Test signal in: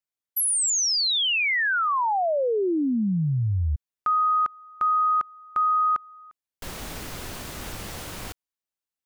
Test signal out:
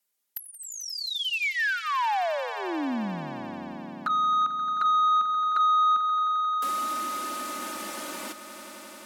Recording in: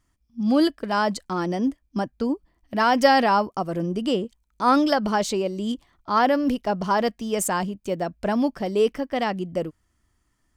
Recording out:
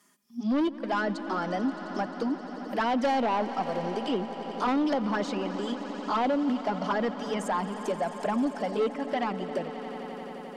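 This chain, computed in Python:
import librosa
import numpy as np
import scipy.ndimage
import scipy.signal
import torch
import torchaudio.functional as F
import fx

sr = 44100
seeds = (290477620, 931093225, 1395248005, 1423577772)

p1 = scipy.signal.sosfilt(scipy.signal.butter(4, 200.0, 'highpass', fs=sr, output='sos'), x)
p2 = fx.env_lowpass_down(p1, sr, base_hz=2900.0, full_db=-21.0)
p3 = fx.high_shelf(p2, sr, hz=9000.0, db=12.0)
p4 = fx.env_flanger(p3, sr, rest_ms=4.9, full_db=-15.5)
p5 = 10.0 ** (-21.0 / 20.0) * np.tanh(p4 / 10.0 ** (-21.0 / 20.0))
p6 = p5 + fx.echo_swell(p5, sr, ms=88, loudest=5, wet_db=-18, dry=0)
y = fx.band_squash(p6, sr, depth_pct=40)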